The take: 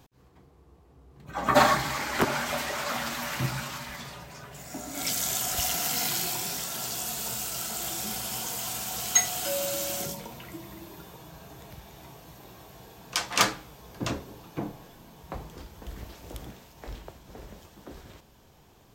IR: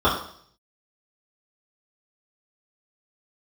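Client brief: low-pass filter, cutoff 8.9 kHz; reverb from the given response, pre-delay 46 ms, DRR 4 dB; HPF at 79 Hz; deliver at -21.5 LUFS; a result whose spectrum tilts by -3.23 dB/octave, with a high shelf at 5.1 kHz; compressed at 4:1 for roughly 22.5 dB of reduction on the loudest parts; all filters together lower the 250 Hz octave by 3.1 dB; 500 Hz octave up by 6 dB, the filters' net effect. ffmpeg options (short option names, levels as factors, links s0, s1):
-filter_complex "[0:a]highpass=79,lowpass=8900,equalizer=f=250:t=o:g=-7,equalizer=f=500:t=o:g=9,highshelf=f=5100:g=-8,acompressor=threshold=0.0112:ratio=4,asplit=2[s0][s1];[1:a]atrim=start_sample=2205,adelay=46[s2];[s1][s2]afir=irnorm=-1:irlink=0,volume=0.0596[s3];[s0][s3]amix=inputs=2:normalize=0,volume=9.44"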